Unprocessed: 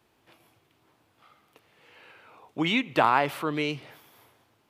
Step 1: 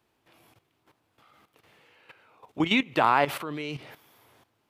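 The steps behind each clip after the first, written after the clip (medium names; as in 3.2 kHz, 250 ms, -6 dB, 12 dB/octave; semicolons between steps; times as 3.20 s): level held to a coarse grid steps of 13 dB; trim +5 dB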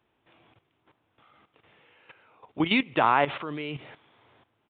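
resampled via 8 kHz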